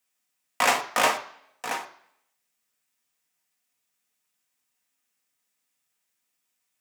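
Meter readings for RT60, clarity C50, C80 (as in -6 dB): 0.65 s, 13.5 dB, 16.0 dB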